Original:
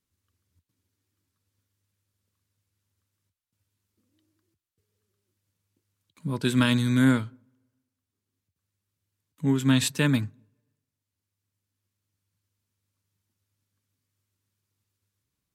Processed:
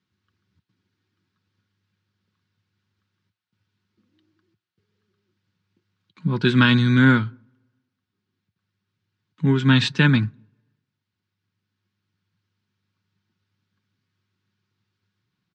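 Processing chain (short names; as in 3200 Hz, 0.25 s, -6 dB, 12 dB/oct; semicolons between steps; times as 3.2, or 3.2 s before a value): speaker cabinet 110–4700 Hz, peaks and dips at 110 Hz +7 dB, 190 Hz +4 dB, 580 Hz -9 dB, 1500 Hz +5 dB; comb 5.5 ms, depth 33%; gain +6 dB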